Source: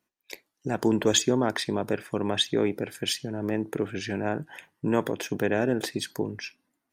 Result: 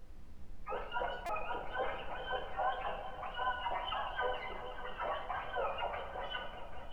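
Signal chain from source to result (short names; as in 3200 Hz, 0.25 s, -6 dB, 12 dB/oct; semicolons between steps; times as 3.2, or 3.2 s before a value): spectrum mirrored in octaves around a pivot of 560 Hz; weighting filter A; low-pass opened by the level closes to 300 Hz, open at -29.5 dBFS; high shelf 2100 Hz -10.5 dB; reverse; compressor 6:1, threshold -38 dBFS, peak gain reduction 13 dB; reverse; limiter -38 dBFS, peak gain reduction 10 dB; transient shaper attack -11 dB, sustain +6 dB; LFO high-pass sine 3.7 Hz 500–4700 Hz; added noise brown -61 dBFS; repeats that get brighter 0.198 s, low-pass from 200 Hz, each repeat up 2 oct, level -6 dB; on a send at -2 dB: reverb RT60 0.80 s, pre-delay 4 ms; on the sum: stuck buffer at 1.26, samples 128, times 10; gain +6 dB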